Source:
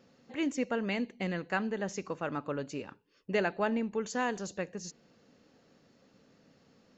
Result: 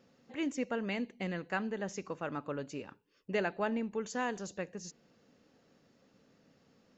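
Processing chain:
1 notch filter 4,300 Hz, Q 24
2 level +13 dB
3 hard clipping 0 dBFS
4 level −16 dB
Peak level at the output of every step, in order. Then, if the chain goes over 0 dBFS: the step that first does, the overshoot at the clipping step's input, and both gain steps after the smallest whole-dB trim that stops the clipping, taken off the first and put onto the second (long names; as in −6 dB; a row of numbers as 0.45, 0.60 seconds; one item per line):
−16.0, −3.0, −3.0, −19.0 dBFS
no step passes full scale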